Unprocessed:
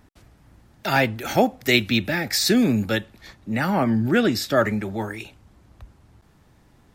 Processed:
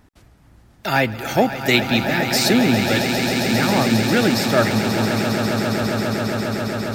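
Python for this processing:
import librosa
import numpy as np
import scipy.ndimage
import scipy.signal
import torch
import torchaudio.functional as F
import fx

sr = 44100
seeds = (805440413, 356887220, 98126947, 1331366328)

y = fx.echo_swell(x, sr, ms=135, loudest=8, wet_db=-11.0)
y = F.gain(torch.from_numpy(y), 1.5).numpy()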